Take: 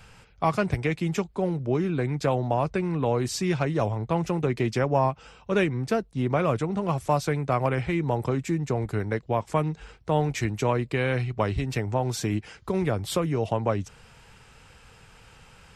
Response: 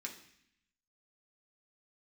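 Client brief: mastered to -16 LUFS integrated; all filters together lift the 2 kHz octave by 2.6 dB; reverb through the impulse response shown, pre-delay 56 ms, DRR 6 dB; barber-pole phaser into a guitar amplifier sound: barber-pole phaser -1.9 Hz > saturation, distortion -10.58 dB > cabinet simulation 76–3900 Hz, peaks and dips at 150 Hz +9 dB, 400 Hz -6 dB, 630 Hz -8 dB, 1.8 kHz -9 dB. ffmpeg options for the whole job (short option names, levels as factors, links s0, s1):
-filter_complex "[0:a]equalizer=f=2000:t=o:g=8,asplit=2[s0][s1];[1:a]atrim=start_sample=2205,adelay=56[s2];[s1][s2]afir=irnorm=-1:irlink=0,volume=0.596[s3];[s0][s3]amix=inputs=2:normalize=0,asplit=2[s4][s5];[s5]afreqshift=-1.9[s6];[s4][s6]amix=inputs=2:normalize=1,asoftclip=threshold=0.0596,highpass=76,equalizer=f=150:t=q:w=4:g=9,equalizer=f=400:t=q:w=4:g=-6,equalizer=f=630:t=q:w=4:g=-8,equalizer=f=1800:t=q:w=4:g=-9,lowpass=f=3900:w=0.5412,lowpass=f=3900:w=1.3066,volume=5.31"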